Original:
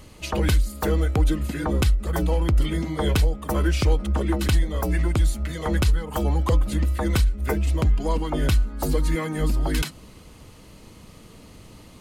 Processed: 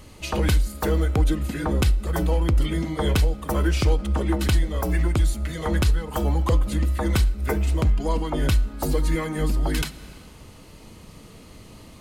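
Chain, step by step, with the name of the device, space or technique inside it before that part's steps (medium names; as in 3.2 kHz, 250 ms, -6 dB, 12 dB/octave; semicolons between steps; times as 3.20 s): compressed reverb return (on a send at -5 dB: reverberation RT60 1.1 s, pre-delay 16 ms + compression 6:1, threshold -31 dBFS, peak gain reduction 16 dB)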